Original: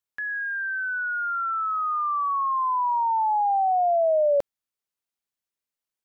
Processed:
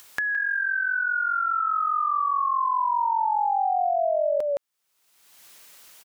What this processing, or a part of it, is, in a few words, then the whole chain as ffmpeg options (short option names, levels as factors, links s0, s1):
upward and downward compression: -af "lowshelf=f=400:g=-10,aecho=1:1:166:0.708,acompressor=mode=upward:threshold=0.0631:ratio=2.5,acompressor=threshold=0.0794:ratio=6,volume=1.26"